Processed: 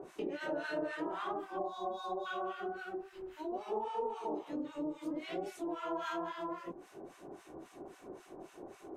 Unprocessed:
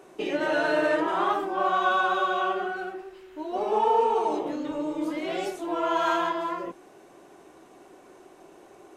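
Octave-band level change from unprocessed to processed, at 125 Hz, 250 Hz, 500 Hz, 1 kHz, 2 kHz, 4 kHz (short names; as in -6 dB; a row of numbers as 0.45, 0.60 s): -8.0, -9.0, -12.0, -15.0, -15.5, -13.5 dB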